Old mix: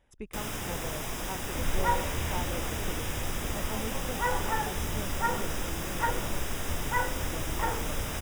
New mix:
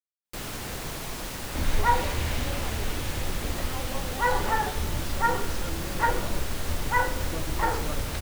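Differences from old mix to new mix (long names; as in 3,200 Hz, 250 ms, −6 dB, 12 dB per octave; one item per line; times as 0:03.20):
speech: muted
second sound +5.0 dB
master: remove Butterworth band-reject 4,300 Hz, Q 4.5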